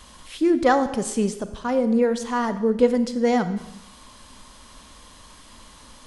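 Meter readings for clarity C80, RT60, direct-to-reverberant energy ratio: 14.0 dB, 0.90 s, 11.0 dB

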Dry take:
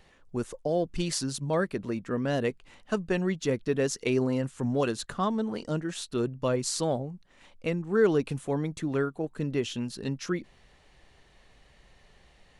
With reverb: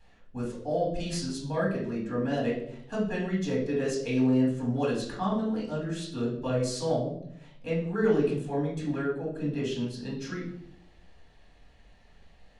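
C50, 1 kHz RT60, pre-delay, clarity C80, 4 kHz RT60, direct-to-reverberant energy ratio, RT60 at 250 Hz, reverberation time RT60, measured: 4.5 dB, 0.60 s, 4 ms, 9.0 dB, 0.50 s, -6.0 dB, 0.95 s, 0.70 s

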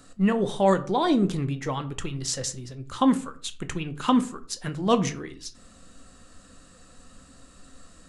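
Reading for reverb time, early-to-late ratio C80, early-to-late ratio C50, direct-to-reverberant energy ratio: 0.45 s, 20.0 dB, 16.0 dB, 9.0 dB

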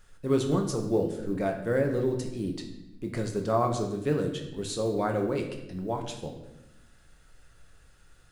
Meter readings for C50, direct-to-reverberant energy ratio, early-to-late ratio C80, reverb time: 7.0 dB, 1.5 dB, 9.5 dB, 0.90 s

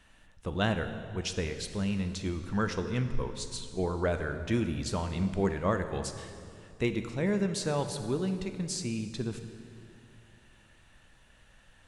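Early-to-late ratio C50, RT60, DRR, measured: 9.0 dB, 2.4 s, 7.5 dB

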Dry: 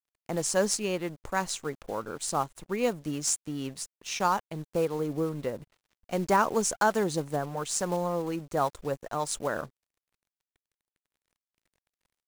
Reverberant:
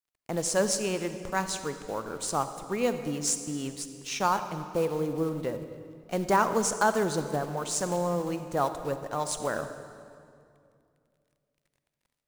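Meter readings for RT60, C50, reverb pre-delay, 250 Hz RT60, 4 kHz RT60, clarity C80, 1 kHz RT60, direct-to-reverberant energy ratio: 2.4 s, 9.5 dB, 39 ms, 2.9 s, 1.8 s, 10.5 dB, 2.2 s, 9.0 dB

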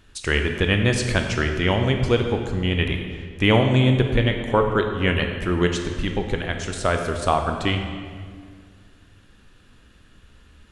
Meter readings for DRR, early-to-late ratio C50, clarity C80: 4.0 dB, 5.5 dB, 7.0 dB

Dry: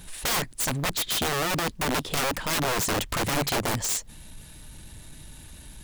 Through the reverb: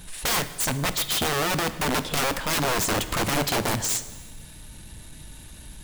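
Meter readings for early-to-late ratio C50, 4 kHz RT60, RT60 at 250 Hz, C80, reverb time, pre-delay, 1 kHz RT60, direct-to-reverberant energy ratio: 13.5 dB, 1.3 s, 1.6 s, 15.0 dB, 1.4 s, 4 ms, 1.3 s, 11.5 dB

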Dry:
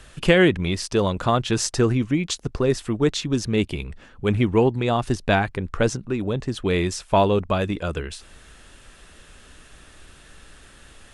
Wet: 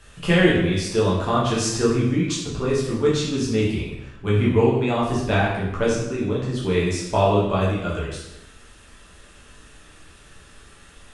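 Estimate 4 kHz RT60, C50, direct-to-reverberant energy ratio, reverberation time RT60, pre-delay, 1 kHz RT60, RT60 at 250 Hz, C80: 0.80 s, 2.5 dB, -6.5 dB, 0.90 s, 7 ms, 0.90 s, 0.95 s, 5.0 dB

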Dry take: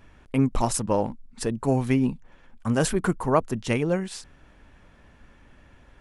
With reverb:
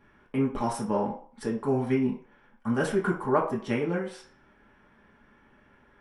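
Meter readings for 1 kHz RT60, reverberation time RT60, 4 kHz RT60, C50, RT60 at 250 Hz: 0.50 s, 0.45 s, 0.45 s, 8.5 dB, 0.40 s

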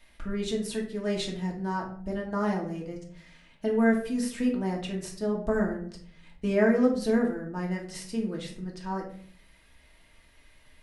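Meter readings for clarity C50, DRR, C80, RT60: 7.5 dB, -2.0 dB, 12.0 dB, 0.55 s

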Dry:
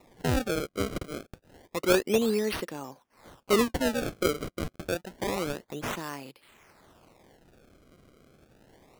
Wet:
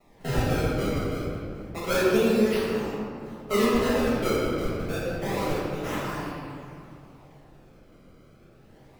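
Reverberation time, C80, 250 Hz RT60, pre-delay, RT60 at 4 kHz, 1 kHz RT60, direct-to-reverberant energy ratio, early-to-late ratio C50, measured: 2.4 s, -1.0 dB, 3.1 s, 5 ms, 1.3 s, 2.3 s, -9.5 dB, -3.0 dB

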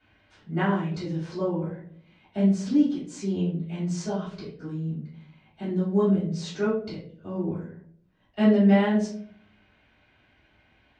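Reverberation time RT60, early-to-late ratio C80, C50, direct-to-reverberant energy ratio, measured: 0.60 s, 9.0 dB, 4.5 dB, -12.5 dB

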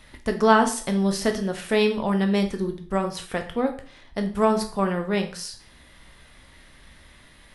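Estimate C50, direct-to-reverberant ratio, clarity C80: 11.0 dB, 4.5 dB, 15.5 dB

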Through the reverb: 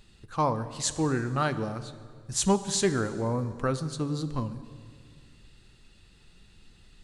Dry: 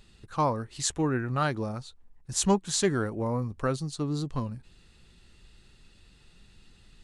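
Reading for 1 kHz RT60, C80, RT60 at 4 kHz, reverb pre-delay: 1.8 s, 14.0 dB, 1.6 s, 7 ms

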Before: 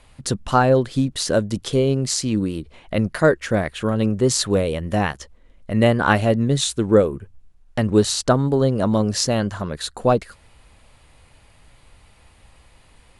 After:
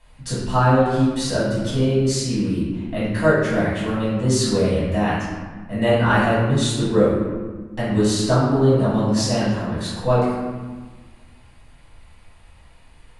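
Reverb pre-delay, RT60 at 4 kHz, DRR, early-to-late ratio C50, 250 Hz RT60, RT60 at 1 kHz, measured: 4 ms, 0.90 s, -10.5 dB, -1.0 dB, 2.1 s, 1.4 s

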